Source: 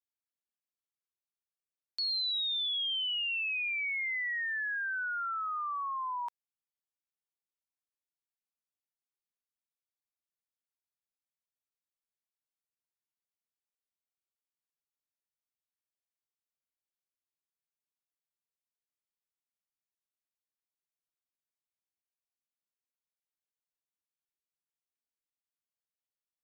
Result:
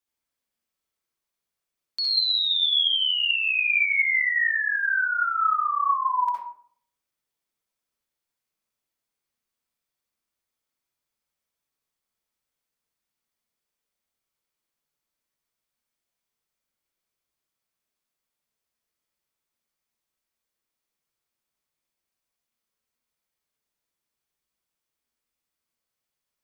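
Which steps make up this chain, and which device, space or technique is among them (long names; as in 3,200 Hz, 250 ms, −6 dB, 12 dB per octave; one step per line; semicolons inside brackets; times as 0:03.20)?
bathroom (convolution reverb RT60 0.60 s, pre-delay 57 ms, DRR −2.5 dB)
level +6.5 dB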